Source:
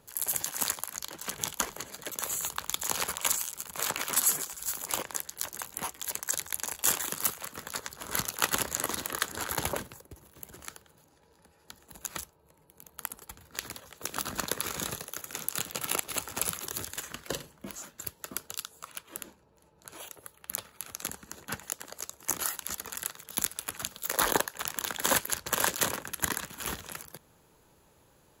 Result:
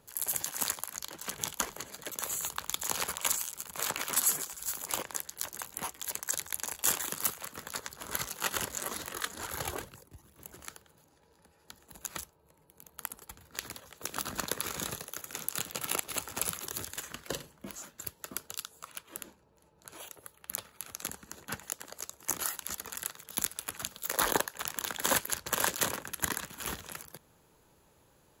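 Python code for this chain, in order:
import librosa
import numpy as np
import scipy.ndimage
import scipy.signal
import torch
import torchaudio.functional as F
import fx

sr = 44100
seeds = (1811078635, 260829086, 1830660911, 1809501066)

y = fx.chorus_voices(x, sr, voices=2, hz=1.1, base_ms=23, depth_ms=3.0, mix_pct=70, at=(8.17, 10.52))
y = y * librosa.db_to_amplitude(-2.0)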